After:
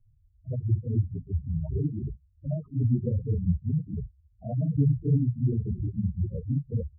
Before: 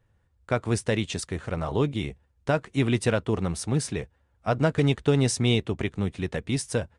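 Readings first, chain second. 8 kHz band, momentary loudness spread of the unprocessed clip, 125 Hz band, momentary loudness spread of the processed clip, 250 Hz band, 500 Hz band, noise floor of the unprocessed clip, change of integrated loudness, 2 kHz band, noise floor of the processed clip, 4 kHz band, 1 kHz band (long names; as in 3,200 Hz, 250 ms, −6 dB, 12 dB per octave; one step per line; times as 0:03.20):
below −40 dB, 10 LU, +2.0 dB, 12 LU, −3.5 dB, −13.0 dB, −68 dBFS, −2.0 dB, below −40 dB, −63 dBFS, below −40 dB, below −20 dB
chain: random phases in long frames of 100 ms
RIAA equalisation playback
gate on every frequency bin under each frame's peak −10 dB strong
rotating-speaker cabinet horn 6.3 Hz
level −8 dB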